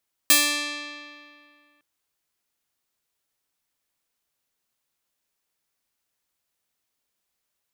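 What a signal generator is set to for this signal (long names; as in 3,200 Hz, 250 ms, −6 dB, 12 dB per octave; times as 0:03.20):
Karplus-Strong string D4, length 1.51 s, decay 2.26 s, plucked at 0.4, bright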